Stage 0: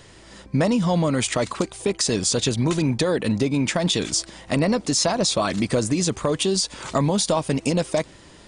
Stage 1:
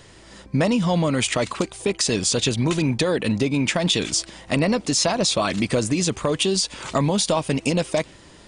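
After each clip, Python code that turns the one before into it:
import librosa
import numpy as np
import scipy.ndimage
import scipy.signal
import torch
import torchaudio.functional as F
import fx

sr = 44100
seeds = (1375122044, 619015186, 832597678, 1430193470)

y = fx.dynamic_eq(x, sr, hz=2700.0, q=1.8, threshold_db=-42.0, ratio=4.0, max_db=5)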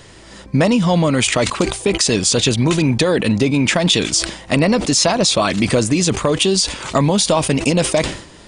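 y = fx.sustainer(x, sr, db_per_s=100.0)
y = F.gain(torch.from_numpy(y), 5.5).numpy()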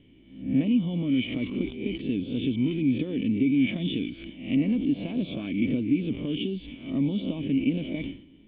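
y = fx.spec_swells(x, sr, rise_s=0.51)
y = fx.formant_cascade(y, sr, vowel='i')
y = F.gain(torch.from_numpy(y), -4.0).numpy()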